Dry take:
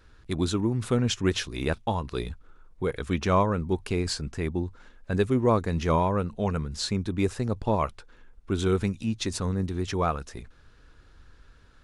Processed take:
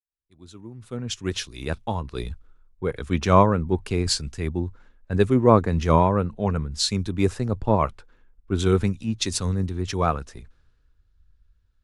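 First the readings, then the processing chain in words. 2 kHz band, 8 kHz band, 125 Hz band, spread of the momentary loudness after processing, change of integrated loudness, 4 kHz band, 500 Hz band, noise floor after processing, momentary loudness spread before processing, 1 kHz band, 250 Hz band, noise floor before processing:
+1.0 dB, +5.5 dB, +4.0 dB, 14 LU, +4.0 dB, +4.5 dB, +4.0 dB, −64 dBFS, 9 LU, +5.0 dB, +3.0 dB, −55 dBFS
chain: fade in at the beginning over 2.24 s
low-shelf EQ 150 Hz +3.5 dB
multiband upward and downward expander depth 70%
level +2 dB

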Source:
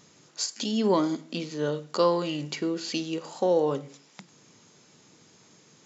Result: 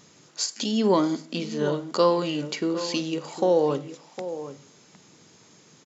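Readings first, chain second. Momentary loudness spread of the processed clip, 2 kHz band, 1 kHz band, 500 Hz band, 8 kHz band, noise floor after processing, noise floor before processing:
14 LU, +2.5 dB, +2.5 dB, +2.5 dB, can't be measured, −56 dBFS, −58 dBFS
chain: slap from a distant wall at 130 metres, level −12 dB
level +2.5 dB

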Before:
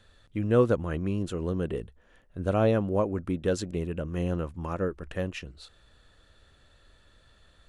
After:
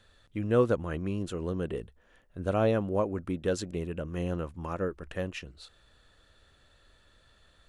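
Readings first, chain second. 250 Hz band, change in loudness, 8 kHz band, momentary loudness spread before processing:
−3.0 dB, −2.5 dB, −1.0 dB, 13 LU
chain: low-shelf EQ 330 Hz −3 dB
level −1 dB

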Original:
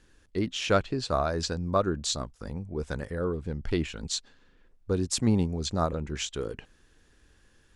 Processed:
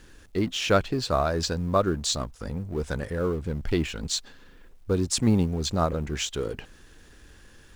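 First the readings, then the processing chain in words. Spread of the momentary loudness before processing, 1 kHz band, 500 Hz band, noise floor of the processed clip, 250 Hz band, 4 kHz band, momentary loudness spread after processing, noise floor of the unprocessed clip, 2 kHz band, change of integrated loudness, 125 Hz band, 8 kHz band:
10 LU, +2.5 dB, +3.0 dB, −52 dBFS, +3.0 dB, +3.5 dB, 10 LU, −62 dBFS, +3.0 dB, +3.0 dB, +3.0 dB, +3.0 dB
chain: mu-law and A-law mismatch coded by mu
level +2 dB

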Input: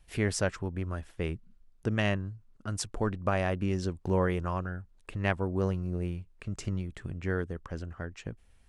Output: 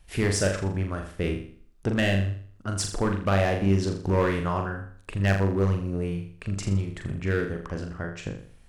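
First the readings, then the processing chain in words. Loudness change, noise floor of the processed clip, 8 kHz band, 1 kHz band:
+5.5 dB, −52 dBFS, +6.5 dB, +5.0 dB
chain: gain into a clipping stage and back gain 23 dB
flutter between parallel walls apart 7 metres, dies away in 0.51 s
level +5 dB

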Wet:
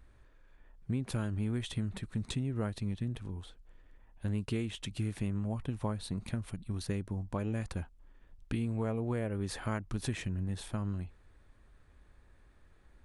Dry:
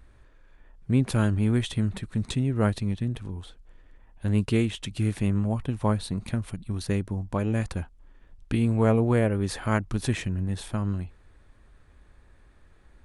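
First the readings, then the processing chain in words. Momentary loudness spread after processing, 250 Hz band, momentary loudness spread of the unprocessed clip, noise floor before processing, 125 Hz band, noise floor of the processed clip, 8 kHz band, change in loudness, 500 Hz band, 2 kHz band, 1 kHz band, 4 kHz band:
7 LU, −10.0 dB, 11 LU, −56 dBFS, −9.0 dB, −62 dBFS, −7.0 dB, −9.5 dB, −11.0 dB, −9.5 dB, −10.5 dB, −7.0 dB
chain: downward compressor, threshold −24 dBFS, peak gain reduction 8.5 dB
level −5.5 dB

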